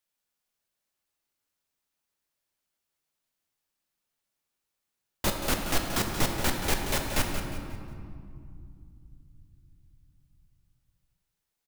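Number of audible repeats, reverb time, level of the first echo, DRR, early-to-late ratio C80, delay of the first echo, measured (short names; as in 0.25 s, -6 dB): 3, 2.4 s, -9.5 dB, 1.5 dB, 3.5 dB, 0.179 s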